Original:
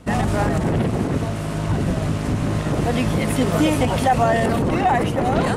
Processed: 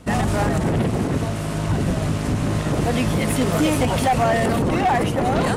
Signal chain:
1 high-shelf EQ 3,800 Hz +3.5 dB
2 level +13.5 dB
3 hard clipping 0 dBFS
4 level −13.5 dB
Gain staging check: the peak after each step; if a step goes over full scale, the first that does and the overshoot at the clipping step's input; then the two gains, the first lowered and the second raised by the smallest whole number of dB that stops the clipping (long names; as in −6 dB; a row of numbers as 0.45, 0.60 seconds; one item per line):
−5.5, +8.0, 0.0, −13.5 dBFS
step 2, 8.0 dB
step 2 +5.5 dB, step 4 −5.5 dB